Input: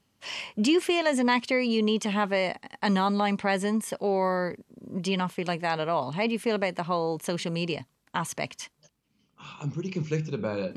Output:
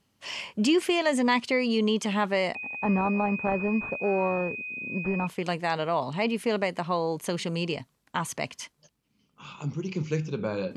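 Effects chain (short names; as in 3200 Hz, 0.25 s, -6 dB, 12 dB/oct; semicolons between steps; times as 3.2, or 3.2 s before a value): 2.55–5.27 pulse-width modulation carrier 2500 Hz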